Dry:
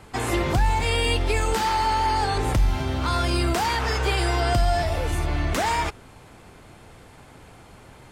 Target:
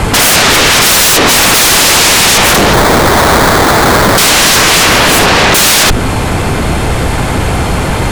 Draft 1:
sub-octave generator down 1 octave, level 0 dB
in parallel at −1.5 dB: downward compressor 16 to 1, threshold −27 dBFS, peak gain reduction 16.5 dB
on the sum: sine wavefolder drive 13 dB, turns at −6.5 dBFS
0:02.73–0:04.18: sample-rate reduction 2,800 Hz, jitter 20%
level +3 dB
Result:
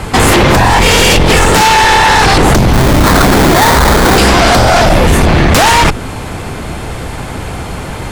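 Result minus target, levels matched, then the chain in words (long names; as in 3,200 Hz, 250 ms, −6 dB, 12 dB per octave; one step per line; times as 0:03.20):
sine wavefolder: distortion −35 dB
sub-octave generator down 1 octave, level 0 dB
in parallel at −1.5 dB: downward compressor 16 to 1, threshold −27 dBFS, peak gain reduction 16.5 dB
on the sum: sine wavefolder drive 23 dB, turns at −6.5 dBFS
0:02.73–0:04.18: sample-rate reduction 2,800 Hz, jitter 20%
level +3 dB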